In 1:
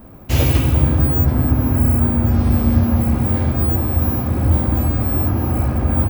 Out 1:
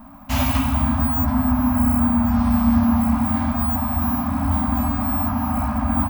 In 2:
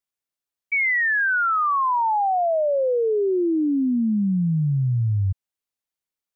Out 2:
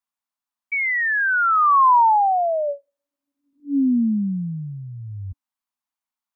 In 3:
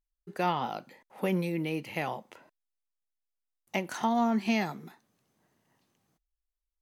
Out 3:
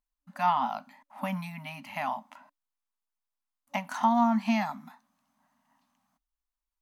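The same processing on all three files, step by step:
graphic EQ 125/250/500/1000 Hz -12/+9/-4/+11 dB; FFT band-reject 280–570 Hz; gain -3 dB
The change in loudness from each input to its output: -3.0, +2.5, +1.5 LU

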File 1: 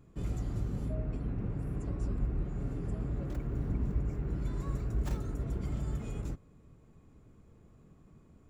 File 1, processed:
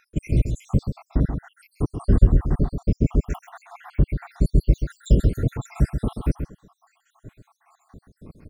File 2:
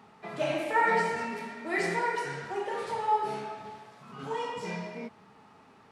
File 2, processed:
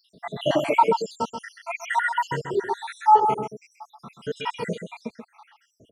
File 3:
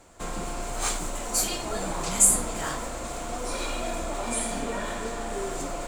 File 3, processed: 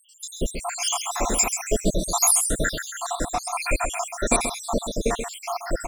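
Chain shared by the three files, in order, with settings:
random spectral dropouts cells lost 83%; echo 0.132 s -8 dB; match loudness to -24 LUFS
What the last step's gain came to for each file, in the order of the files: +19.0, +11.5, +13.0 dB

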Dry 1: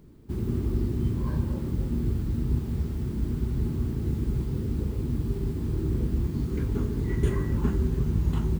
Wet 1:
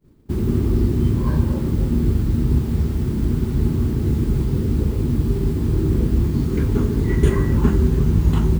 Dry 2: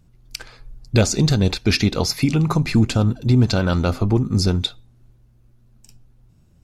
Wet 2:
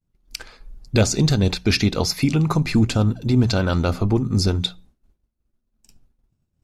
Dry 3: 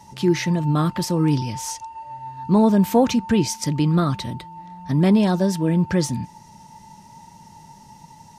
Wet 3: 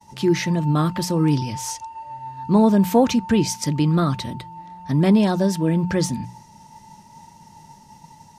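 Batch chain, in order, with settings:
notches 60/120/180 Hz; expander -43 dBFS; match loudness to -20 LUFS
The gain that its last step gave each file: +9.5, -0.5, +0.5 dB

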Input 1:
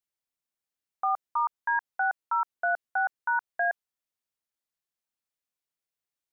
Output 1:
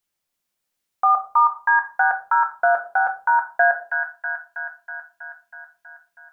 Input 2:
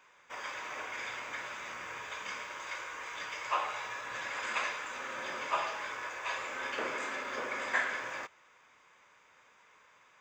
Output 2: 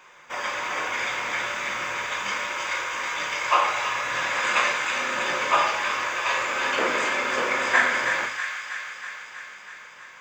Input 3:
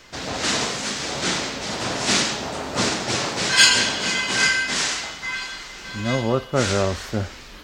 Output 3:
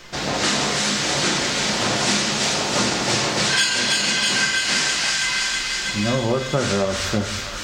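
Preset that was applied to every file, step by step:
thin delay 0.322 s, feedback 68%, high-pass 1600 Hz, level -5 dB; shoebox room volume 290 m³, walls furnished, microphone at 0.9 m; compressor 6:1, threshold -21 dBFS; normalise peaks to -6 dBFS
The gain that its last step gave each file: +9.5, +11.0, +4.5 dB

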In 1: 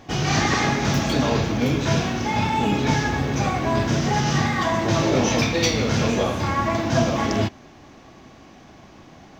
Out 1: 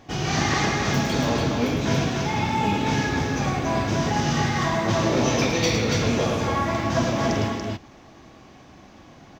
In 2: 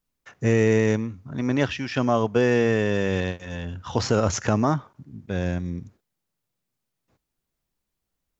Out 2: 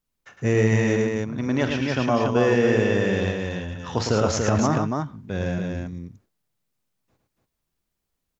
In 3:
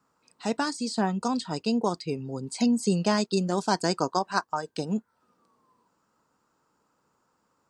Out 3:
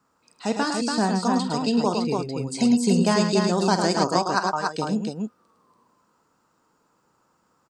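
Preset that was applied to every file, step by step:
loudspeakers at several distances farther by 16 m -12 dB, 37 m -6 dB, 98 m -4 dB; match loudness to -23 LUFS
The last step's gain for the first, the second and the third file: -3.5, -1.0, +2.5 dB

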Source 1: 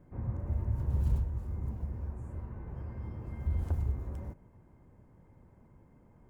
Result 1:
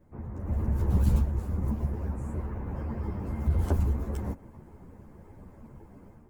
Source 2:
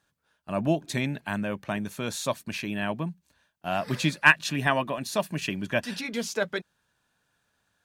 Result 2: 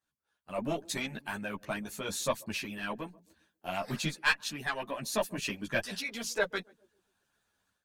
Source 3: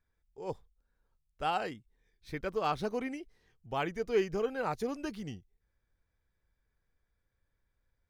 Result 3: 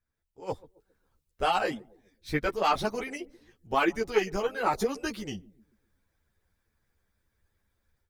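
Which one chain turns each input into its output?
one diode to ground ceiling -16.5 dBFS; AGC gain up to 10.5 dB; high shelf 7100 Hz +4 dB; narrowing echo 0.134 s, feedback 42%, band-pass 320 Hz, level -19 dB; harmonic-percussive split harmonic -12 dB; ensemble effect; normalise peaks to -12 dBFS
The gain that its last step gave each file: +7.5, -7.5, +3.0 dB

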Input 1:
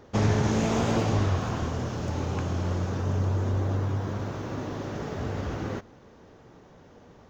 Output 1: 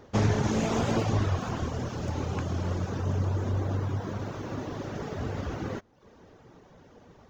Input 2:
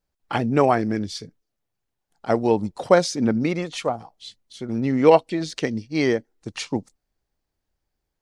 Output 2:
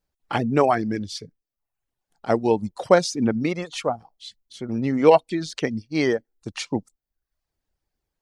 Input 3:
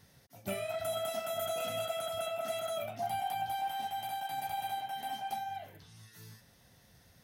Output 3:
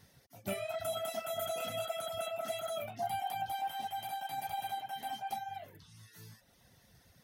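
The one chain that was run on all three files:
reverb removal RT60 0.62 s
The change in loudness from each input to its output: -2.0, -0.5, -1.5 LU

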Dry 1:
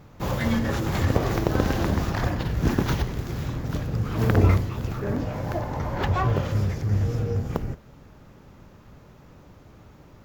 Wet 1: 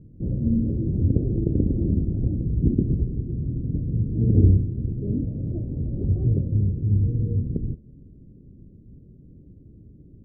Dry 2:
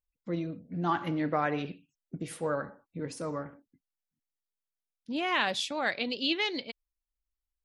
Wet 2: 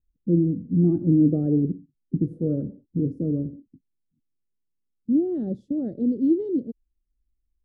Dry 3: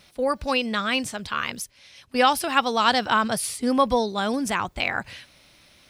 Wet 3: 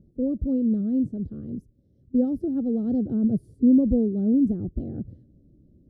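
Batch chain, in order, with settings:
inverse Chebyshev low-pass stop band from 920 Hz, stop band 50 dB; match loudness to -24 LUFS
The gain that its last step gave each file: +2.5, +15.0, +8.0 dB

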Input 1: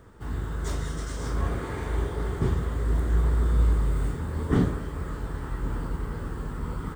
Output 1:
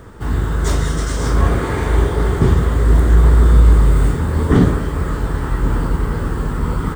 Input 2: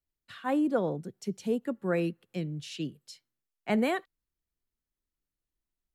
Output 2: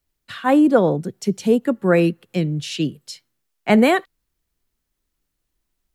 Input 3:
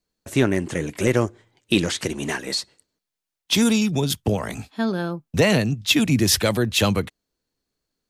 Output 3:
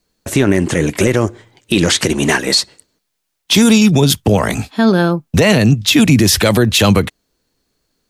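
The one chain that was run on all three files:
limiter -15 dBFS; normalise peaks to -2 dBFS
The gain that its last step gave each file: +13.0, +13.0, +13.0 dB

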